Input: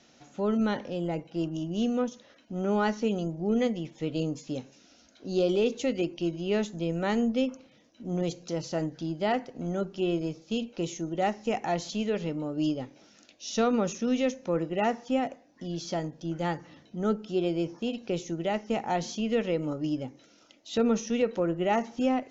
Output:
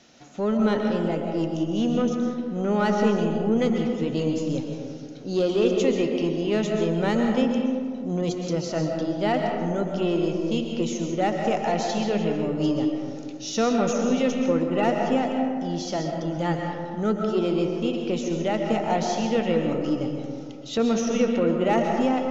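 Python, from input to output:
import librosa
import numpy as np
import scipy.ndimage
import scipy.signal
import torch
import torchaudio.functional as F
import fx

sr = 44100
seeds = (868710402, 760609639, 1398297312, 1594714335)

p1 = 10.0 ** (-26.5 / 20.0) * np.tanh(x / 10.0 ** (-26.5 / 20.0))
p2 = x + (p1 * 10.0 ** (-3.5 / 20.0))
y = fx.rev_freeverb(p2, sr, rt60_s=2.1, hf_ratio=0.35, predelay_ms=90, drr_db=2.0)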